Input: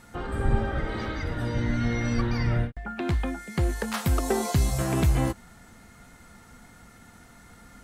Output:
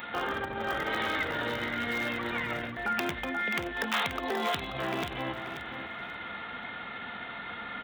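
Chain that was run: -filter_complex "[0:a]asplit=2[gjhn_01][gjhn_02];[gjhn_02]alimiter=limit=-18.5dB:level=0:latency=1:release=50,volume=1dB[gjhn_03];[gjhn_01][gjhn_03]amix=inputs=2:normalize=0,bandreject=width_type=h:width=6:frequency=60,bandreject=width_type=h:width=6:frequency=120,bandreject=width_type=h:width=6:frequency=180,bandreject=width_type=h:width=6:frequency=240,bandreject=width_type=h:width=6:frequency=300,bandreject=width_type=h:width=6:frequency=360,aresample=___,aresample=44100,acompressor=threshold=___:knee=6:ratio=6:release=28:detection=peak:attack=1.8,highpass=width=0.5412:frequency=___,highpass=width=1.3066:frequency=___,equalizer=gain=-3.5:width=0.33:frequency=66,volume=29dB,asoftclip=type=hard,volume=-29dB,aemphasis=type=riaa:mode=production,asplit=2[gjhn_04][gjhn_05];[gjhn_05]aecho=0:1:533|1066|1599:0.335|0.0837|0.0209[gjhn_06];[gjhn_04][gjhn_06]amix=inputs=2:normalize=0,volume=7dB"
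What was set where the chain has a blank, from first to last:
8000, -33dB, 42, 42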